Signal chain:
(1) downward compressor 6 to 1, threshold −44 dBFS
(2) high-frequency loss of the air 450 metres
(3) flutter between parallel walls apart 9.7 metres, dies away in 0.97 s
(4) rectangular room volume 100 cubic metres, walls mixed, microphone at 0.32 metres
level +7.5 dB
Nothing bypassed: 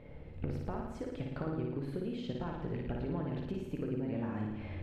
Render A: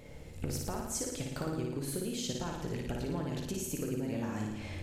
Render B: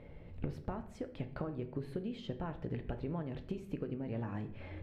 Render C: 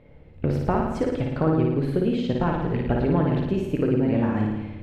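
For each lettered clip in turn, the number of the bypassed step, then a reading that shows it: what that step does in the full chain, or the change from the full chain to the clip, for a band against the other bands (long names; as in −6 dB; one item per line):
2, 4 kHz band +10.5 dB
3, change in crest factor +3.0 dB
1, average gain reduction 11.5 dB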